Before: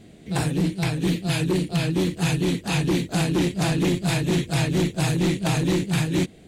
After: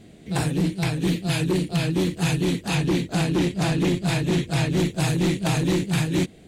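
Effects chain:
0:02.75–0:04.78: high-shelf EQ 7,600 Hz −5.5 dB

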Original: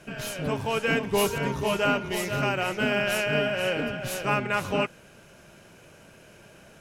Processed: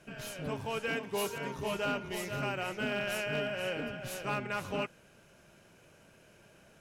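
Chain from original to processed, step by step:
0:00.88–0:01.59: high-pass filter 240 Hz 6 dB per octave
gain into a clipping stage and back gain 18 dB
level −8.5 dB

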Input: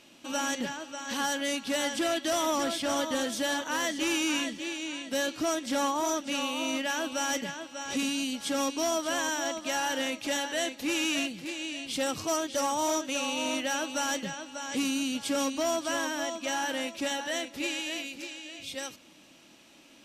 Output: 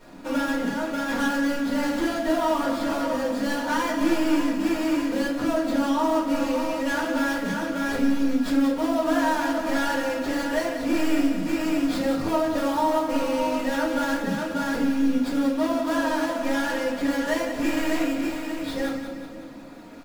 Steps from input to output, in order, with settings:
running median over 15 samples
comb filter 4.2 ms, depth 52%
downward compressor, threshold −36 dBFS, peak gain reduction 11 dB
echo with a time of its own for lows and highs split 590 Hz, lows 275 ms, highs 182 ms, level −9 dB
rectangular room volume 250 cubic metres, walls furnished, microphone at 4.7 metres
level +4.5 dB

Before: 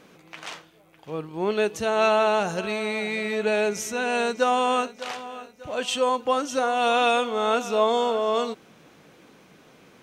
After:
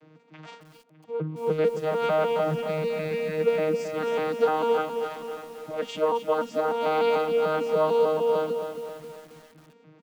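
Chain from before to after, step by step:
vocoder with an arpeggio as carrier bare fifth, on D#3, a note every 149 ms
comb filter 6.5 ms, depth 78%
feedback echo at a low word length 268 ms, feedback 55%, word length 7 bits, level −7.5 dB
level −4.5 dB

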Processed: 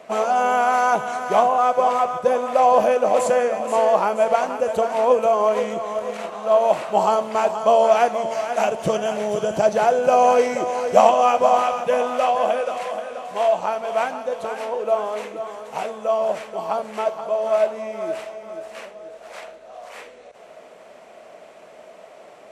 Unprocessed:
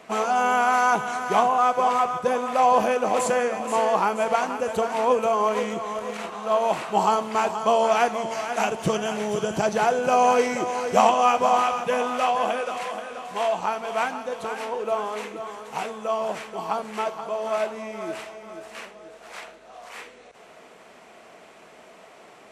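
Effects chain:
parametric band 590 Hz +11 dB 0.53 octaves
level −1 dB

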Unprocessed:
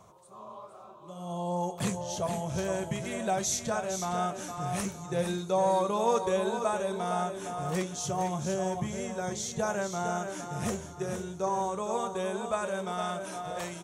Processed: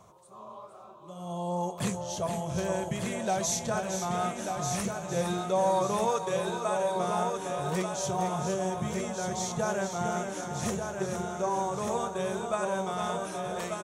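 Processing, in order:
0:06.05–0:06.96: high-pass filter 520 Hz 6 dB per octave
repeating echo 1,189 ms, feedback 38%, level −6 dB

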